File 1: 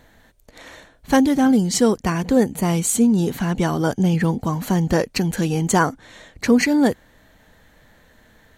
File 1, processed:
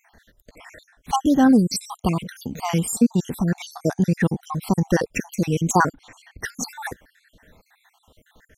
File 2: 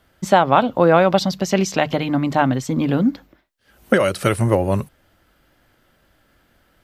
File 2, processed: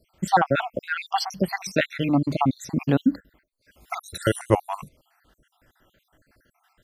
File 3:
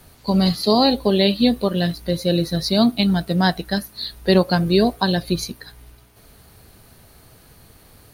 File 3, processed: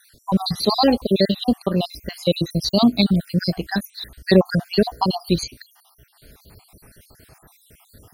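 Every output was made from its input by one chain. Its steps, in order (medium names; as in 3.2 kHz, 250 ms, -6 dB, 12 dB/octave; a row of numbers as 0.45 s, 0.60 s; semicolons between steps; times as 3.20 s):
random holes in the spectrogram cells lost 61%; peak normalisation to -3 dBFS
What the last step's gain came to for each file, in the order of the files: +1.0 dB, -0.5 dB, +2.5 dB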